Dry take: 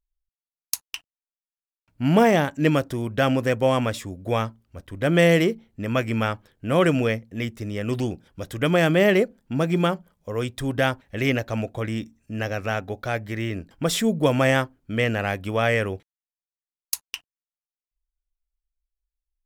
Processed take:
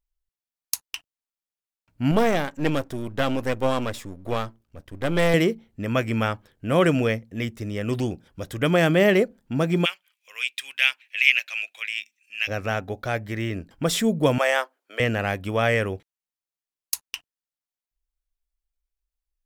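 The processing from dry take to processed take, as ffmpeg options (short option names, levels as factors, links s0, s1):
-filter_complex "[0:a]asettb=1/sr,asplit=3[s0][s1][s2];[s0]atrim=end=2.114[s3];[s1]atrim=start=2.11:end=5.34,asetpts=PTS-STARTPTS,afade=t=in:d=0.004:c=qsin,afade=t=out:st=3.226:d=0.004:c=qsin,aeval=exprs='if(lt(val(0),0),0.251*val(0),val(0))':c=same[s4];[s2]atrim=start=5.336[s5];[s3][s4]acrossfade=d=0.004:c1=hsin:c2=qsin[s6];[s6][s5]acrossfade=d=0.004:c1=qsin:c2=hsin,asplit=3[s7][s8][s9];[s7]afade=t=out:st=9.84:d=0.02[s10];[s8]highpass=f=2500:t=q:w=6.1,afade=t=in:st=9.84:d=0.02,afade=t=out:st=12.47:d=0.02[s11];[s9]afade=t=in:st=12.47:d=0.02[s12];[s10][s11][s12]amix=inputs=3:normalize=0,asettb=1/sr,asplit=3[s13][s14][s15];[s13]atrim=end=14.384[s16];[s14]atrim=start=14.38:end=15,asetpts=PTS-STARTPTS,afade=t=in:d=0.004:c=qsin,afade=t=out:st=0.616:d=0.004:c=qsin,highpass=f=500:w=0.5412,highpass=f=500:w=1.3066[s17];[s15]atrim=start=14.996[s18];[s16][s17]acrossfade=d=0.004:c1=hsin:c2=qsin[s19];[s19][s18]acrossfade=d=0.004:c1=qsin:c2=hsin"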